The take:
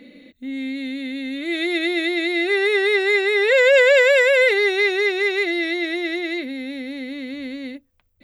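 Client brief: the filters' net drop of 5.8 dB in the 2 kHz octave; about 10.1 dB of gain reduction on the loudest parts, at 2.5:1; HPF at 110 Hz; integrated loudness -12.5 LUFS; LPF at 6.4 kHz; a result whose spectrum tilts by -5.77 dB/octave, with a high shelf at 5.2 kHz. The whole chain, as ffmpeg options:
-af "highpass=110,lowpass=6400,equalizer=f=2000:t=o:g=-5.5,highshelf=f=5200:g=-6,acompressor=threshold=0.0398:ratio=2.5,volume=5.96"

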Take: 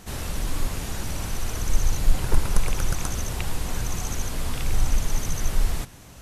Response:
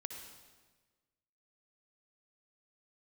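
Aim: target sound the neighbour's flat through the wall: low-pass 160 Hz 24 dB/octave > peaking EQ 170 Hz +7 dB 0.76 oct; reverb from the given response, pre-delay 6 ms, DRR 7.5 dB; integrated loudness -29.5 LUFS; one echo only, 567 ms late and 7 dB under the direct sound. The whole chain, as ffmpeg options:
-filter_complex "[0:a]aecho=1:1:567:0.447,asplit=2[s0][s1];[1:a]atrim=start_sample=2205,adelay=6[s2];[s1][s2]afir=irnorm=-1:irlink=0,volume=0.562[s3];[s0][s3]amix=inputs=2:normalize=0,lowpass=f=160:w=0.5412,lowpass=f=160:w=1.3066,equalizer=f=170:t=o:w=0.76:g=7,volume=0.944"

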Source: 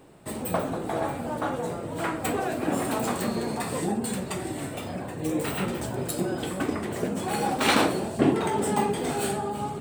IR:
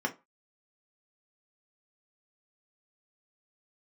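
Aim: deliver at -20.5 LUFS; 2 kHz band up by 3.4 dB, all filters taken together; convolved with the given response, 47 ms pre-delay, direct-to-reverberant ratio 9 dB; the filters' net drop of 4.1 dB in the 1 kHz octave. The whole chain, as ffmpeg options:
-filter_complex "[0:a]equalizer=f=1000:t=o:g=-7,equalizer=f=2000:t=o:g=6.5,asplit=2[s0][s1];[1:a]atrim=start_sample=2205,adelay=47[s2];[s1][s2]afir=irnorm=-1:irlink=0,volume=0.158[s3];[s0][s3]amix=inputs=2:normalize=0,volume=2.24"

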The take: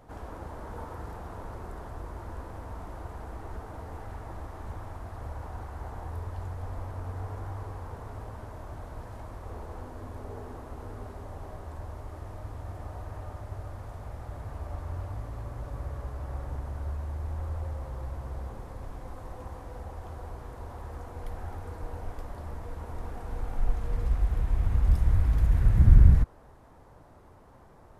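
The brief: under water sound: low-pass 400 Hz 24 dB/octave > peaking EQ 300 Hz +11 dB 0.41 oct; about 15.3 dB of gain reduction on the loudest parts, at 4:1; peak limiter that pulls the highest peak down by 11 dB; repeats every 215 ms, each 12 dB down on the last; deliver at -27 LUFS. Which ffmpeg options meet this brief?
-af "acompressor=threshold=0.0355:ratio=4,alimiter=level_in=2.11:limit=0.0631:level=0:latency=1,volume=0.473,lowpass=f=400:w=0.5412,lowpass=f=400:w=1.3066,equalizer=f=300:t=o:w=0.41:g=11,aecho=1:1:215|430|645:0.251|0.0628|0.0157,volume=5.31"

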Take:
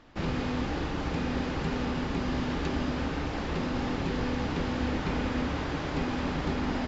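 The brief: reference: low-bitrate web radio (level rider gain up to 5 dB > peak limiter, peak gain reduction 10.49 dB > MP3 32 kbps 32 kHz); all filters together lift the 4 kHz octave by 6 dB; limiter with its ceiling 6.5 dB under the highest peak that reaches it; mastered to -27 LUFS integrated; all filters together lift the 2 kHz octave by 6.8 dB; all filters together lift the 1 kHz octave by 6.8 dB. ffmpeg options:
-af "equalizer=f=1000:t=o:g=7,equalizer=f=2000:t=o:g=5,equalizer=f=4000:t=o:g=5.5,alimiter=limit=0.0841:level=0:latency=1,dynaudnorm=m=1.78,alimiter=level_in=2.51:limit=0.0631:level=0:latency=1,volume=0.398,volume=4.73" -ar 32000 -c:a libmp3lame -b:a 32k

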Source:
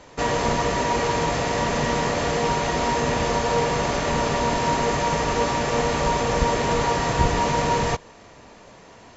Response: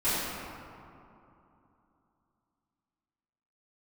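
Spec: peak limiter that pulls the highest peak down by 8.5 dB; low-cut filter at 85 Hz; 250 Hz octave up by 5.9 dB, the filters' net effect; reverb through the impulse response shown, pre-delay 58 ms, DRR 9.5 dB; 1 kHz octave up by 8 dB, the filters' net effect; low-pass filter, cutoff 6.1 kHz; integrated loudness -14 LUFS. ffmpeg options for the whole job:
-filter_complex "[0:a]highpass=85,lowpass=6100,equalizer=f=250:t=o:g=7,equalizer=f=1000:t=o:g=8.5,alimiter=limit=0.266:level=0:latency=1,asplit=2[s0][s1];[1:a]atrim=start_sample=2205,adelay=58[s2];[s1][s2]afir=irnorm=-1:irlink=0,volume=0.0794[s3];[s0][s3]amix=inputs=2:normalize=0,volume=1.88"

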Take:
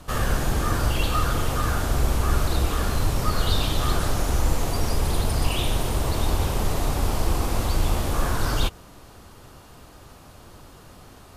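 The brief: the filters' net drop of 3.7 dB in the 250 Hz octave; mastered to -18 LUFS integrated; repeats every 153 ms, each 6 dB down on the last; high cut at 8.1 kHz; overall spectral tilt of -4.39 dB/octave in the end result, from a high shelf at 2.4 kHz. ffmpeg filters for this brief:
-af "lowpass=8100,equalizer=f=250:t=o:g=-5.5,highshelf=f=2400:g=7,aecho=1:1:153|306|459|612|765|918:0.501|0.251|0.125|0.0626|0.0313|0.0157,volume=1.88"

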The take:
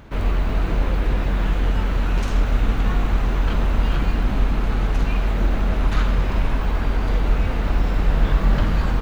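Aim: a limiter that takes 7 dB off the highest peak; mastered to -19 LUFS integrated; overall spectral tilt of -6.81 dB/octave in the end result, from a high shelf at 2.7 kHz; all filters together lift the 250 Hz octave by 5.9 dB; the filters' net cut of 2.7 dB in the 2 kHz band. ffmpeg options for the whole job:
-af "equalizer=f=250:t=o:g=7.5,equalizer=f=2000:t=o:g=-5,highshelf=f=2700:g=3,volume=1.68,alimiter=limit=0.398:level=0:latency=1"

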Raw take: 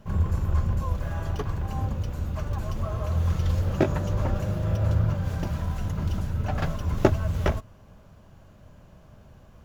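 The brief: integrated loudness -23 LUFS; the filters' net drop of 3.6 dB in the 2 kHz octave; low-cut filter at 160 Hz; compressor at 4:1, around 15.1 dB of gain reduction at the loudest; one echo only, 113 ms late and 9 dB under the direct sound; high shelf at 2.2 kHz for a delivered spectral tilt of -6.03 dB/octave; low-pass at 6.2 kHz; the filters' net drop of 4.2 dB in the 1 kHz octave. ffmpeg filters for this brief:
-af "highpass=160,lowpass=6200,equalizer=f=1000:t=o:g=-5.5,equalizer=f=2000:t=o:g=-7,highshelf=f=2200:g=8,acompressor=threshold=0.0178:ratio=4,aecho=1:1:113:0.355,volume=6.31"

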